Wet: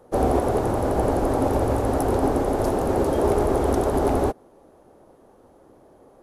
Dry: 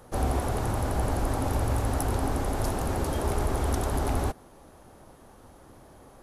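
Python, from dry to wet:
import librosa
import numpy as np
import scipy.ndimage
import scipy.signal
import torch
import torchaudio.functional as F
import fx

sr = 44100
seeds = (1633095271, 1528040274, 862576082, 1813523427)

y = fx.peak_eq(x, sr, hz=440.0, db=13.5, octaves=2.3)
y = fx.upward_expand(y, sr, threshold_db=-37.0, expansion=1.5)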